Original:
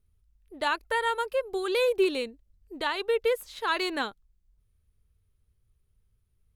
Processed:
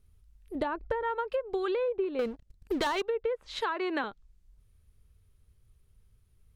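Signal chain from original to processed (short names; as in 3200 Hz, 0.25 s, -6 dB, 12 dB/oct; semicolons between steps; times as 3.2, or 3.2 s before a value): 3.61–4.04 Chebyshev high-pass 200 Hz, order 8; treble ducked by the level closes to 1400 Hz, closed at -23.5 dBFS; 0.55–1.03 tilt shelf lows +8 dB, about 660 Hz; 2.19–3.02 sample leveller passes 3; compressor 10:1, threshold -34 dBFS, peak gain reduction 15 dB; gain +6.5 dB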